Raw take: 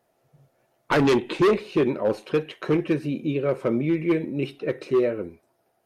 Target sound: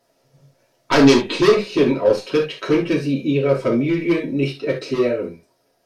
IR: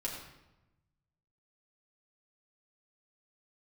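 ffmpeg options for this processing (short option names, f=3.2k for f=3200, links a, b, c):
-filter_complex "[0:a]equalizer=f=5.2k:t=o:w=1.1:g=10.5[a];[1:a]atrim=start_sample=2205,atrim=end_sample=3528[b];[a][b]afir=irnorm=-1:irlink=0,volume=4dB"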